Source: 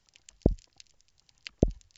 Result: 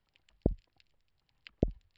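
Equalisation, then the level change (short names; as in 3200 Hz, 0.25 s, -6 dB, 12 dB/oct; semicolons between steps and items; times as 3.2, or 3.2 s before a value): running mean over 7 samples; -5.5 dB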